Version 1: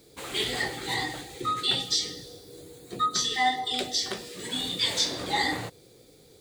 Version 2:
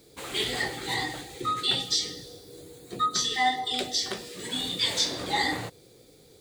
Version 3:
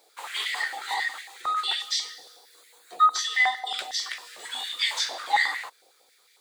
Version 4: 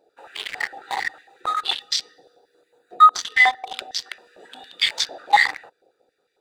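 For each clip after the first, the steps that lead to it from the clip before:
no processing that can be heard
high-pass on a step sequencer 11 Hz 760–2,000 Hz; level −3 dB
adaptive Wiener filter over 41 samples; level +8 dB

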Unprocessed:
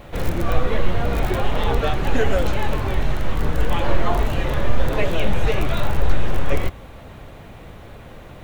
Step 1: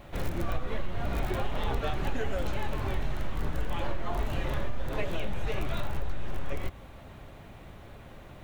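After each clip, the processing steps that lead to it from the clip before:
notch filter 480 Hz, Q 12
downward compressor, threshold −16 dBFS, peak gain reduction 9 dB
level −7.5 dB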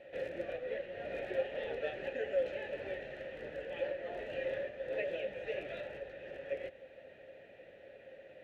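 formant filter e
level +6.5 dB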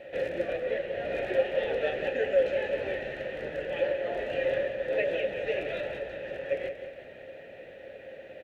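repeating echo 181 ms, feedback 51%, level −10 dB
level +8.5 dB

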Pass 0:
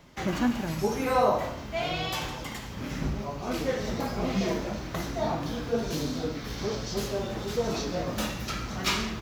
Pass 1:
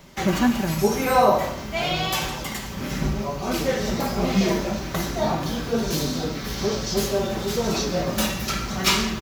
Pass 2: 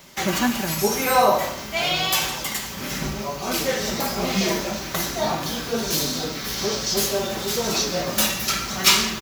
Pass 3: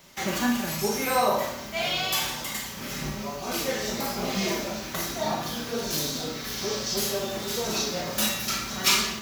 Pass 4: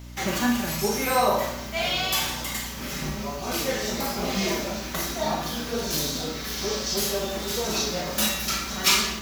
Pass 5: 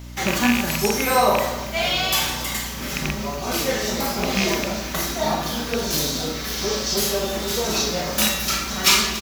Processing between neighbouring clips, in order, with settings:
high-shelf EQ 6,800 Hz +7.5 dB; comb filter 5.2 ms, depth 36%; level +5.5 dB
spectral tilt +2 dB per octave; level +1 dB
four-comb reverb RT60 0.31 s, combs from 26 ms, DRR 3.5 dB; level −6.5 dB
mains hum 60 Hz, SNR 14 dB; level +1.5 dB
loose part that buzzes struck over −27 dBFS, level −13 dBFS; single-tap delay 281 ms −17 dB; level +4 dB

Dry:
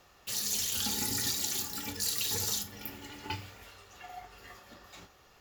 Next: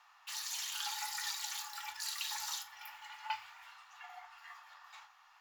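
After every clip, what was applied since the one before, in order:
elliptic high-pass filter 880 Hz, stop band 50 dB
spectral tilt −4 dB per octave
level +3 dB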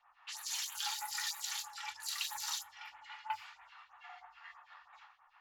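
low-pass that shuts in the quiet parts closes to 2,100 Hz, open at −37 dBFS
all-pass phaser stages 2, 3.1 Hz, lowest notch 130–5,000 Hz
level +1 dB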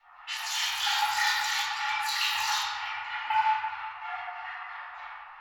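convolution reverb RT60 2.0 s, pre-delay 3 ms, DRR −11.5 dB

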